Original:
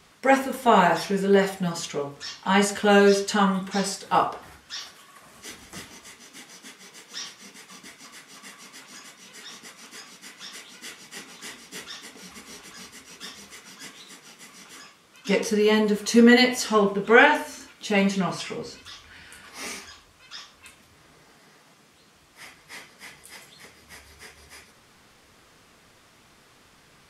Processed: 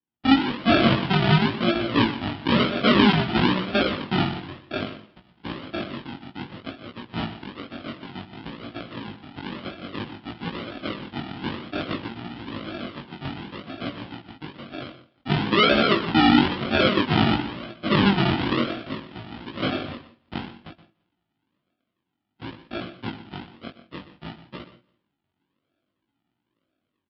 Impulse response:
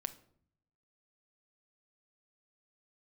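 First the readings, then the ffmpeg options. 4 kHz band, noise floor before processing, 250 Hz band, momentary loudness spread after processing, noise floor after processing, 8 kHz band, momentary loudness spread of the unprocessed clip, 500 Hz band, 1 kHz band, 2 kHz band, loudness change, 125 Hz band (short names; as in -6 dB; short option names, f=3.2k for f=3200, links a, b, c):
+5.0 dB, -57 dBFS, +3.0 dB, 21 LU, -80 dBFS, under -25 dB, 23 LU, -3.5 dB, -1.0 dB, -1.0 dB, -1.5 dB, +7.0 dB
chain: -filter_complex "[0:a]aeval=exprs='if(lt(val(0),0),0.251*val(0),val(0))':c=same,agate=range=-33dB:threshold=-49dB:ratio=16:detection=peak,bandreject=f=1.4k:w=29,aecho=1:1:3:0.83,dynaudnorm=f=100:g=3:m=13dB,alimiter=limit=-7dB:level=0:latency=1:release=67,aresample=11025,acrusher=samples=16:mix=1:aa=0.000001:lfo=1:lforange=9.6:lforate=1,aresample=44100,flanger=delay=17:depth=4.9:speed=0.57,highpass=140,equalizer=f=170:t=q:w=4:g=-3,equalizer=f=430:t=q:w=4:g=-9,equalizer=f=3.1k:t=q:w=4:g=6,lowpass=f=4.1k:w=0.5412,lowpass=f=4.1k:w=1.3066,aecho=1:1:169|338:0.0708|0.017,asplit=2[a][b];[1:a]atrim=start_sample=2205,atrim=end_sample=4410,adelay=122[c];[b][c]afir=irnorm=-1:irlink=0,volume=-12dB[d];[a][d]amix=inputs=2:normalize=0,volume=5.5dB"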